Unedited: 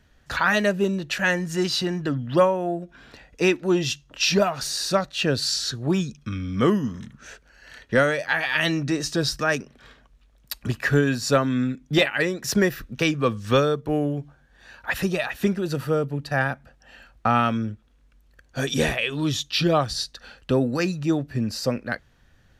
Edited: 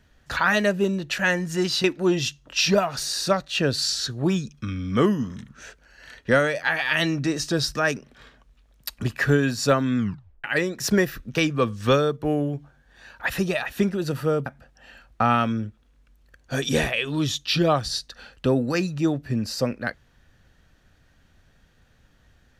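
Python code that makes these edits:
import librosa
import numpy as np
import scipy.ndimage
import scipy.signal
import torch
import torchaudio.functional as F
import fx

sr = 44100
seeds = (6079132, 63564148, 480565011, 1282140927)

y = fx.edit(x, sr, fx.cut(start_s=1.84, length_s=1.64),
    fx.tape_stop(start_s=11.61, length_s=0.47),
    fx.cut(start_s=16.1, length_s=0.41), tone=tone)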